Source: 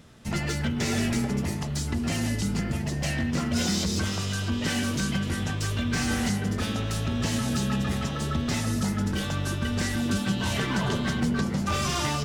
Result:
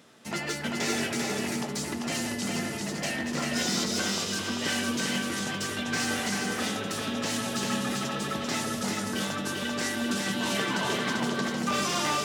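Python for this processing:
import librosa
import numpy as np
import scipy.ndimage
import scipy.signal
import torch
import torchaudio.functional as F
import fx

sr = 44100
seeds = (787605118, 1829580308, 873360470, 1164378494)

y = scipy.signal.sosfilt(scipy.signal.butter(2, 280.0, 'highpass', fs=sr, output='sos'), x)
y = y + 10.0 ** (-3.0 / 20.0) * np.pad(y, (int(392 * sr / 1000.0), 0))[:len(y)]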